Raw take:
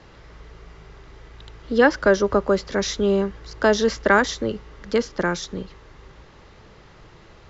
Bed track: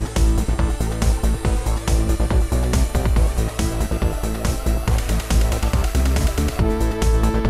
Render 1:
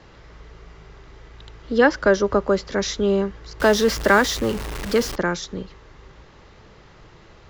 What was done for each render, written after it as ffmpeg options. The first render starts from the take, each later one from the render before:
-filter_complex "[0:a]asettb=1/sr,asplit=3[a][b][c];[a]atrim=end=3.604[d];[b]atrim=start=3.6:end=5.16,asetpts=PTS-STARTPTS,afade=t=in:d=0.004:c=qsin,afade=t=out:st=1.556:d=0.004:c=qsin,aeval=exprs='val(0)+0.5*0.0531*sgn(val(0))':c=same[e];[c]atrim=start=5.156[f];[d][e]acrossfade=d=0.004:c1=hsin:c2=qsin[g];[g][f]acrossfade=d=0.004:c1=qsin:c2=hsin"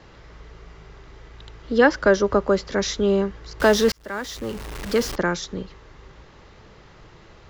-filter_complex "[0:a]asplit=2[a][b];[a]atrim=end=3.92,asetpts=PTS-STARTPTS,afade=t=out:st=3.916:d=0.004:c=hsin[c];[b]atrim=start=3.92,asetpts=PTS-STARTPTS,afade=t=in:d=1.24[d];[c][d]concat=n=2:v=0:a=1"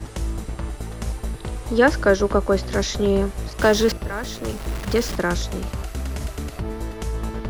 -filter_complex "[1:a]volume=-10dB[a];[0:a][a]amix=inputs=2:normalize=0"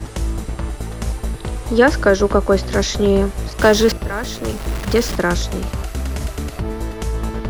-af "volume=4.5dB,alimiter=limit=-2dB:level=0:latency=1"

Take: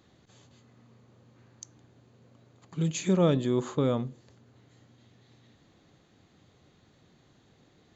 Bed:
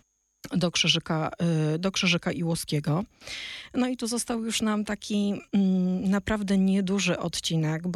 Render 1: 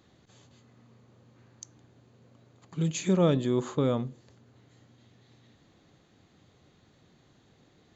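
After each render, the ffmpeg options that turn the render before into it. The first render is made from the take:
-af anull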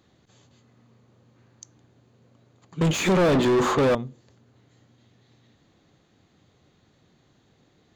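-filter_complex "[0:a]asettb=1/sr,asplit=3[a][b][c];[a]atrim=end=2.814[d];[b]atrim=start=2.81:end=3.95,asetpts=PTS-STARTPTS,afade=t=in:d=0.004:c=qsin,afade=t=out:st=1.136:d=0.004:c=qsin,asplit=2[e][f];[f]highpass=f=720:p=1,volume=36dB,asoftclip=type=tanh:threshold=-12.5dB[g];[e][g]amix=inputs=2:normalize=0,lowpass=f=1.7k:p=1,volume=-6dB[h];[c]atrim=start=3.946[i];[d][h]acrossfade=d=0.004:c1=hsin:c2=qsin[j];[j][i]acrossfade=d=0.004:c1=qsin:c2=hsin"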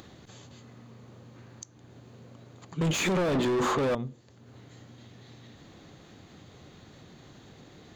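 -af "acompressor=mode=upward:threshold=-40dB:ratio=2.5,alimiter=limit=-21.5dB:level=0:latency=1:release=98"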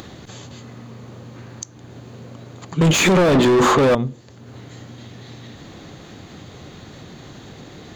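-af "volume=12dB"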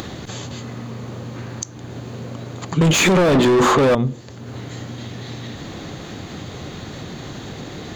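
-filter_complex "[0:a]asplit=2[a][b];[b]alimiter=limit=-17dB:level=0:latency=1:release=34,volume=1.5dB[c];[a][c]amix=inputs=2:normalize=0,acompressor=threshold=-15dB:ratio=2"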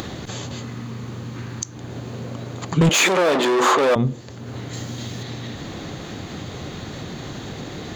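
-filter_complex "[0:a]asettb=1/sr,asplit=3[a][b][c];[a]atrim=end=0.654[d];[b]atrim=start=0.65:end=1.73,asetpts=PTS-STARTPTS,afade=t=in:d=0.004:c=qsin,afade=t=out:st=1.076:d=0.004:c=qsin,equalizer=f=600:w=1.6:g=-7[e];[c]atrim=start=1.726[f];[d][e]acrossfade=d=0.004:c1=hsin:c2=qsin[g];[g][f]acrossfade=d=0.004:c1=qsin:c2=hsin,asettb=1/sr,asplit=3[h][i][j];[h]atrim=end=2.894[k];[i]atrim=start=2.89:end=3.96,asetpts=PTS-STARTPTS,afade=t=in:d=0.004:c=qsin,afade=t=out:st=1.066:d=0.004:c=qsin,highpass=420[l];[j]atrim=start=3.956[m];[k][l]acrossfade=d=0.004:c1=hsin:c2=qsin[n];[n][m]acrossfade=d=0.004:c1=qsin:c2=hsin,asettb=1/sr,asplit=3[o][p][q];[o]atrim=end=4.734[r];[p]atrim=start=4.73:end=5.23,asetpts=PTS-STARTPTS,afade=t=in:d=0.004:c=qsin,afade=t=out:st=0.496:d=0.004:c=qsin,bass=f=250:g=1,treble=f=4k:g=8[s];[q]atrim=start=5.226[t];[r][s]acrossfade=d=0.004:c1=hsin:c2=qsin[u];[u][t]acrossfade=d=0.004:c1=qsin:c2=hsin"

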